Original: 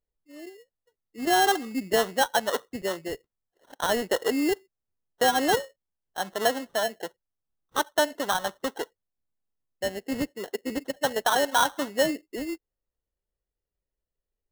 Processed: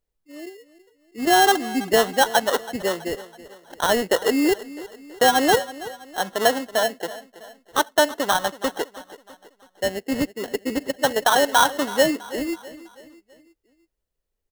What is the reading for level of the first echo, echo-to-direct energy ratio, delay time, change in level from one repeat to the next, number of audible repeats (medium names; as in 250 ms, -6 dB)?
-17.0 dB, -16.0 dB, 327 ms, -6.5 dB, 3